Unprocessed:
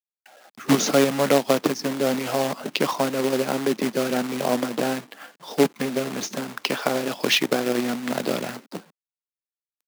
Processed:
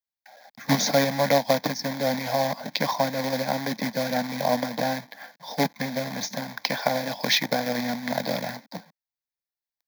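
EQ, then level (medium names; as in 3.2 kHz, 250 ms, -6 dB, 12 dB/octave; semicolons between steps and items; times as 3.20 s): static phaser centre 1.9 kHz, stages 8; +2.5 dB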